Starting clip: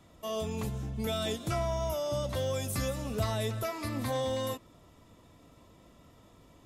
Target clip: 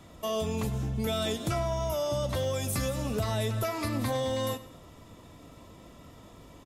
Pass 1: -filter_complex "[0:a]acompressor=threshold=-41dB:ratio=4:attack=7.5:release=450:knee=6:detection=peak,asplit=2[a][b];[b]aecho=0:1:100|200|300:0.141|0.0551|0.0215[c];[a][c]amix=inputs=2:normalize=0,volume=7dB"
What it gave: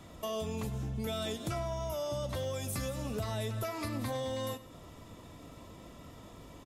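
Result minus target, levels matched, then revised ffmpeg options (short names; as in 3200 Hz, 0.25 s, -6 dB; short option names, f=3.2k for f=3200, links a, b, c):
compressor: peak gain reduction +6 dB
-filter_complex "[0:a]acompressor=threshold=-33dB:ratio=4:attack=7.5:release=450:knee=6:detection=peak,asplit=2[a][b];[b]aecho=0:1:100|200|300:0.141|0.0551|0.0215[c];[a][c]amix=inputs=2:normalize=0,volume=7dB"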